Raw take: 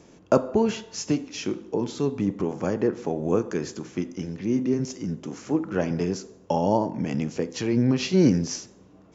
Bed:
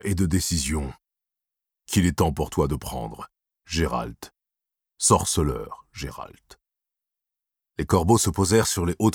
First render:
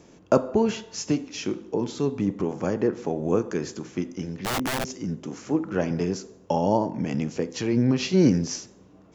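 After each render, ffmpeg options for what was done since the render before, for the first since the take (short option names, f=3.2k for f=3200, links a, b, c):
-filter_complex "[0:a]asettb=1/sr,asplit=3[a][b][c];[a]atrim=end=4.374[d];[b]atrim=start=4.37:end=4.9,asetpts=PTS-STARTPTS,afade=t=in:d=0.004:c=qsin,afade=t=out:st=0.526:d=0.004:c=qsin,aeval=exprs='(mod(11.9*val(0)+1,2)-1)/11.9':c=same[e];[c]atrim=start=4.896[f];[d][e]acrossfade=d=0.004:c1=hsin:c2=qsin[g];[g][f]acrossfade=d=0.004:c1=qsin:c2=hsin"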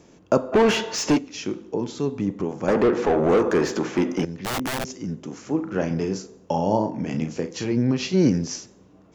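-filter_complex "[0:a]asplit=3[a][b][c];[a]afade=t=out:st=0.52:d=0.02[d];[b]asplit=2[e][f];[f]highpass=f=720:p=1,volume=26dB,asoftclip=type=tanh:threshold=-9dB[g];[e][g]amix=inputs=2:normalize=0,lowpass=f=2.1k:p=1,volume=-6dB,afade=t=in:st=0.52:d=0.02,afade=t=out:st=1.17:d=0.02[h];[c]afade=t=in:st=1.17:d=0.02[i];[d][h][i]amix=inputs=3:normalize=0,asettb=1/sr,asplit=3[j][k][l];[j]atrim=end=2.684[m];[k]atrim=start=2.68:end=4.25,asetpts=PTS-STARTPTS,afade=t=in:d=0.004:c=qsin,afade=t=out:st=1.566:d=0.004:c=qsin,asplit=2[n][o];[o]highpass=f=720:p=1,volume=27dB,asoftclip=type=tanh:threshold=-9.5dB[p];[n][p]amix=inputs=2:normalize=0,lowpass=f=1.3k:p=1,volume=-6dB[q];[l]atrim=start=4.246[r];[m][q]acrossfade=d=0.004:c1=hsin:c2=qsin[s];[s][r]acrossfade=d=0.004:c1=qsin:c2=hsin,asettb=1/sr,asplit=3[t][u][v];[t]atrim=end=5.544[w];[u]atrim=start=5.54:end=7.72,asetpts=PTS-STARTPTS,afade=t=in:d=0.004:c=qsin,afade=t=out:st=2.176:d=0.004:c=qsin,asplit=2[x][y];[y]adelay=37,volume=-7.5dB[z];[x][z]amix=inputs=2:normalize=0,atrim=end_sample=96138[aa];[v]atrim=start=7.716[ab];[w][aa]acrossfade=d=0.004:c1=hsin:c2=qsin[ac];[ac][ab]acrossfade=d=0.004:c1=qsin:c2=hsin"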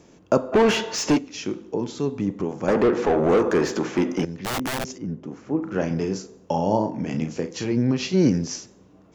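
-filter_complex "[0:a]asettb=1/sr,asplit=3[a][b][c];[a]atrim=end=4.984[d];[b]atrim=start=4.98:end=5.63,asetpts=PTS-STARTPTS,afade=t=in:d=0.004:c=qsin,afade=t=out:st=0.646:d=0.004:c=qsin,lowpass=f=1.2k:p=1[e];[c]atrim=start=5.626[f];[d][e]acrossfade=d=0.004:c1=hsin:c2=qsin[g];[g][f]acrossfade=d=0.004:c1=qsin:c2=hsin"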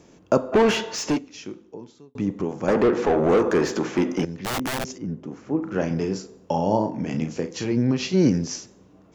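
-filter_complex "[0:a]asettb=1/sr,asplit=3[a][b][c];[a]atrim=end=6.074[d];[b]atrim=start=6.07:end=6.92,asetpts=PTS-STARTPTS,afade=t=in:d=0.004:c=qsin,afade=t=out:st=0.846:d=0.004:c=qsin,bandreject=f=6.3k:w=12[e];[c]atrim=start=6.916[f];[d][e]acrossfade=d=0.004:c1=hsin:c2=qsin[g];[g][f]acrossfade=d=0.004:c1=qsin:c2=hsin,asplit=2[h][i];[h]atrim=end=2.15,asetpts=PTS-STARTPTS,afade=t=out:st=0.57:d=1.58[j];[i]atrim=start=2.15,asetpts=PTS-STARTPTS,afade=t=in:d=0.004:c=hsin[k];[j][k]concat=n=2:v=0:a=1"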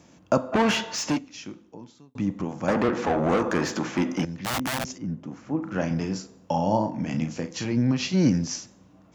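-af "highpass=51,equalizer=f=410:w=3.2:g=-11.5"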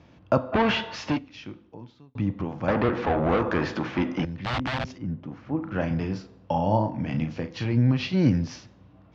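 -af "lowpass=f=4.1k:w=0.5412,lowpass=f=4.1k:w=1.3066,lowshelf=f=140:t=q:w=1.5:g=6"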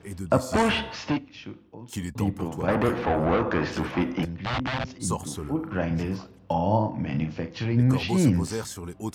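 -filter_complex "[1:a]volume=-12.5dB[a];[0:a][a]amix=inputs=2:normalize=0"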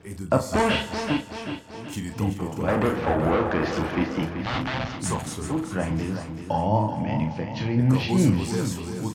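-filter_complex "[0:a]asplit=2[a][b];[b]adelay=38,volume=-8dB[c];[a][c]amix=inputs=2:normalize=0,aecho=1:1:383|766|1149|1532|1915|2298:0.355|0.174|0.0852|0.0417|0.0205|0.01"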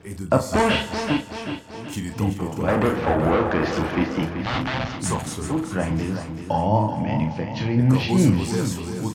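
-af "volume=2.5dB"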